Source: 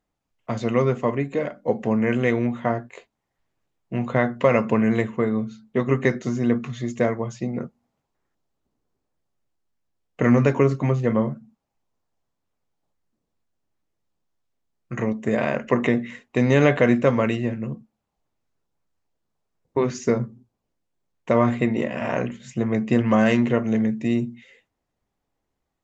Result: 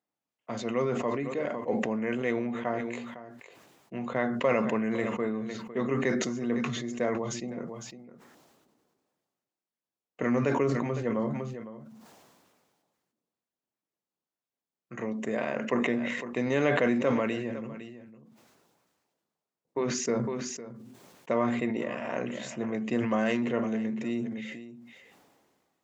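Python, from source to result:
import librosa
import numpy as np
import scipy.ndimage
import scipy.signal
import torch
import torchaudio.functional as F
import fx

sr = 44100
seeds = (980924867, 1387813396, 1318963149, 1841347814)

y = scipy.signal.sosfilt(scipy.signal.butter(2, 200.0, 'highpass', fs=sr, output='sos'), x)
y = y + 10.0 ** (-17.5 / 20.0) * np.pad(y, (int(507 * sr / 1000.0), 0))[:len(y)]
y = fx.sustainer(y, sr, db_per_s=30.0)
y = y * librosa.db_to_amplitude(-8.5)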